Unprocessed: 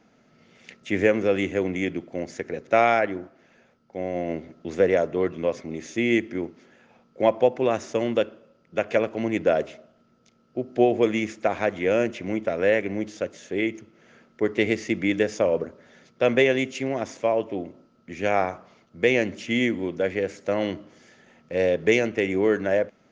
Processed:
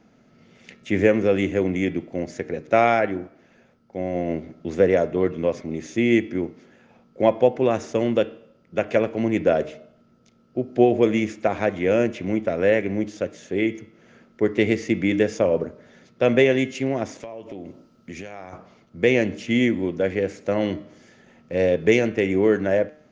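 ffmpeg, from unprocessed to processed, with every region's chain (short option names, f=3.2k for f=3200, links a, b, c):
-filter_complex "[0:a]asettb=1/sr,asplit=3[a][b][c];[a]atrim=end=17.204[d];[b]atrim=start=17.2:end=18.53,asetpts=PTS-STARTPTS,afade=t=in:d=0.004:c=qsin,afade=t=out:st=1.326:d=0.004:c=qsin,highshelf=f=3.2k:g=8.5,acompressor=threshold=-34dB:ratio=10:attack=3.2:release=140:knee=1:detection=peak[e];[c]atrim=start=18.526[f];[d][e]acrossfade=d=0.004:c1=hsin:c2=qsin[g];[g][f]acrossfade=d=0.004:c1=qsin:c2=hsin,lowshelf=f=360:g=6.5,bandreject=f=152.6:t=h:w=4,bandreject=f=305.2:t=h:w=4,bandreject=f=457.8:t=h:w=4,bandreject=f=610.4:t=h:w=4,bandreject=f=763:t=h:w=4,bandreject=f=915.6:t=h:w=4,bandreject=f=1.0682k:t=h:w=4,bandreject=f=1.2208k:t=h:w=4,bandreject=f=1.3734k:t=h:w=4,bandreject=f=1.526k:t=h:w=4,bandreject=f=1.6786k:t=h:w=4,bandreject=f=1.8312k:t=h:w=4,bandreject=f=1.9838k:t=h:w=4,bandreject=f=2.1364k:t=h:w=4,bandreject=f=2.289k:t=h:w=4,bandreject=f=2.4416k:t=h:w=4,bandreject=f=2.5942k:t=h:w=4,bandreject=f=2.7468k:t=h:w=4,bandreject=f=2.8994k:t=h:w=4,bandreject=f=3.052k:t=h:w=4,bandreject=f=3.2046k:t=h:w=4,bandreject=f=3.3572k:t=h:w=4,bandreject=f=3.5098k:t=h:w=4,bandreject=f=3.6624k:t=h:w=4,bandreject=f=3.815k:t=h:w=4,bandreject=f=3.9676k:t=h:w=4,bandreject=f=4.1202k:t=h:w=4,bandreject=f=4.2728k:t=h:w=4,bandreject=f=4.4254k:t=h:w=4"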